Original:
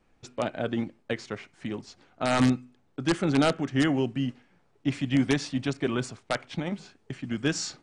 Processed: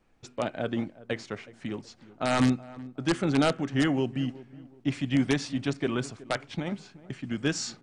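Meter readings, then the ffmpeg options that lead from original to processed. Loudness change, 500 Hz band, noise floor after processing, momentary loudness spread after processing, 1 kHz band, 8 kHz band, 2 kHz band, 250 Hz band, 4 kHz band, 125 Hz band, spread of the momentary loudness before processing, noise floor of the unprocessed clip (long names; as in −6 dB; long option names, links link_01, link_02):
−1.0 dB, −1.0 dB, −58 dBFS, 15 LU, −1.0 dB, −1.0 dB, −1.0 dB, −1.0 dB, −1.0 dB, −1.0 dB, 13 LU, −66 dBFS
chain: -filter_complex "[0:a]asplit=2[link_01][link_02];[link_02]adelay=371,lowpass=frequency=1100:poles=1,volume=-18dB,asplit=2[link_03][link_04];[link_04]adelay=371,lowpass=frequency=1100:poles=1,volume=0.36,asplit=2[link_05][link_06];[link_06]adelay=371,lowpass=frequency=1100:poles=1,volume=0.36[link_07];[link_01][link_03][link_05][link_07]amix=inputs=4:normalize=0,volume=-1dB"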